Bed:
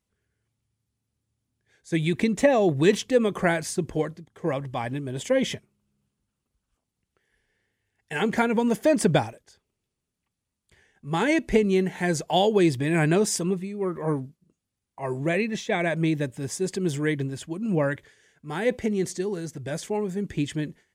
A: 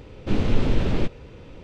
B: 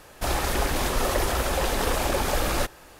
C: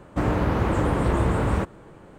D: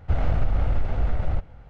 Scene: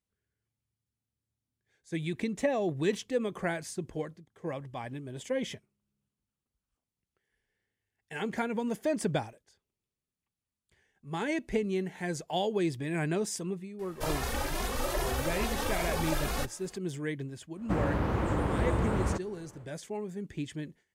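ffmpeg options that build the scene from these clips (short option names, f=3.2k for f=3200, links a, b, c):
-filter_complex "[0:a]volume=-9.5dB[a];[2:a]asplit=2[b][c];[c]adelay=2.4,afreqshift=2.4[d];[b][d]amix=inputs=2:normalize=1,atrim=end=2.99,asetpts=PTS-STARTPTS,volume=-4.5dB,afade=t=in:d=0.004:c=hsin,afade=t=out:st=2.986:d=0.004:c=hsin,adelay=13790[e];[3:a]atrim=end=2.18,asetpts=PTS-STARTPTS,volume=-7dB,afade=t=in:d=0.1,afade=t=out:st=2.08:d=0.1,adelay=17530[f];[a][e][f]amix=inputs=3:normalize=0"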